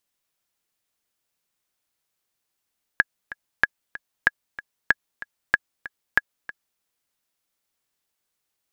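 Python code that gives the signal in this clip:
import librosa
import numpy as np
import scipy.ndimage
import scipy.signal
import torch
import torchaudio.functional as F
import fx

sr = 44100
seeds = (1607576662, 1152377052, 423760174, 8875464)

y = fx.click_track(sr, bpm=189, beats=2, bars=6, hz=1670.0, accent_db=17.5, level_db=-2.5)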